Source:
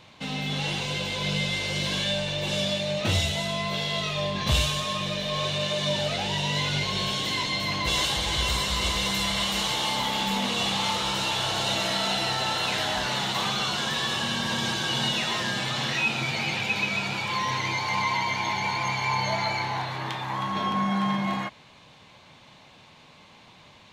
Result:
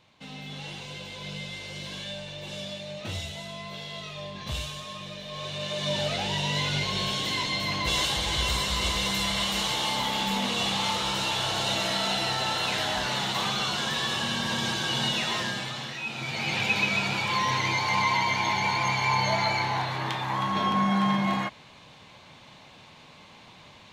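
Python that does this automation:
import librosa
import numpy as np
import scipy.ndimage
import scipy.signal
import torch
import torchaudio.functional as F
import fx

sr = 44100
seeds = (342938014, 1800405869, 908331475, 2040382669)

y = fx.gain(x, sr, db=fx.line((5.27, -10.0), (6.0, -1.0), (15.4, -1.0), (15.99, -10.0), (16.61, 1.5)))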